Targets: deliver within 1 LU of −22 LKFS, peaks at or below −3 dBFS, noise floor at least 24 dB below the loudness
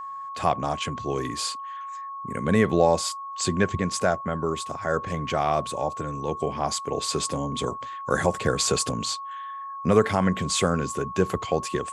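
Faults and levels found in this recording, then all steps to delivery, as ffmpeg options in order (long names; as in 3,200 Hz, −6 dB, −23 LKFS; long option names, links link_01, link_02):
interfering tone 1,100 Hz; level of the tone −33 dBFS; integrated loudness −26.0 LKFS; sample peak −6.0 dBFS; target loudness −22.0 LKFS
→ -af "bandreject=frequency=1100:width=30"
-af "volume=4dB,alimiter=limit=-3dB:level=0:latency=1"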